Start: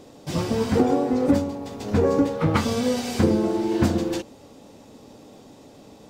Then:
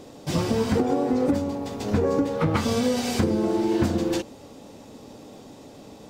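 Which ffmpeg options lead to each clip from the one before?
ffmpeg -i in.wav -af "acompressor=threshold=-21dB:ratio=6,volume=2.5dB" out.wav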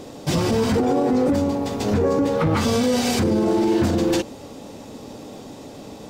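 ffmpeg -i in.wav -af "alimiter=limit=-18.5dB:level=0:latency=1:release=11,volume=6.5dB" out.wav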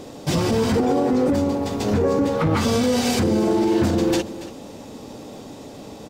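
ffmpeg -i in.wav -af "aecho=1:1:282:0.168" out.wav

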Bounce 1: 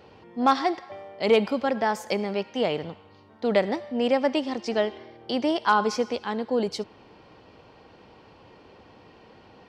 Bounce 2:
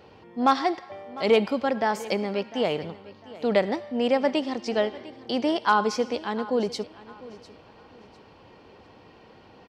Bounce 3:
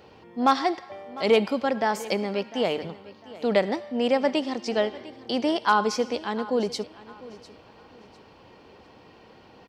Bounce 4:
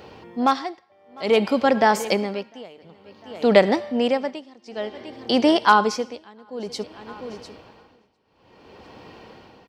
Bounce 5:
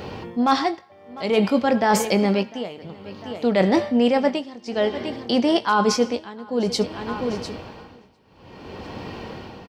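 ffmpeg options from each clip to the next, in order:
ffmpeg -i in.wav -af "aecho=1:1:701|1402|2103:0.119|0.0357|0.0107" out.wav
ffmpeg -i in.wav -af "highshelf=frequency=5700:gain=4.5,bandreject=frequency=50:width_type=h:width=6,bandreject=frequency=100:width_type=h:width=6,bandreject=frequency=150:width_type=h:width=6" out.wav
ffmpeg -i in.wav -af "tremolo=f=0.55:d=0.95,volume=7.5dB" out.wav
ffmpeg -i in.wav -filter_complex "[0:a]bass=frequency=250:gain=6,treble=frequency=4000:gain=0,areverse,acompressor=threshold=-23dB:ratio=16,areverse,asplit=2[link_01][link_02];[link_02]adelay=21,volume=-11dB[link_03];[link_01][link_03]amix=inputs=2:normalize=0,volume=8dB" out.wav

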